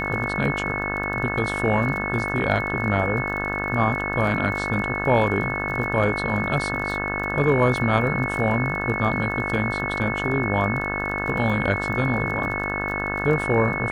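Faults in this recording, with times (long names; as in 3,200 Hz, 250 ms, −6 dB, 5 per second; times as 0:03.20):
mains buzz 50 Hz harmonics 35 −29 dBFS
surface crackle 29 per second −31 dBFS
whistle 2,200 Hz −27 dBFS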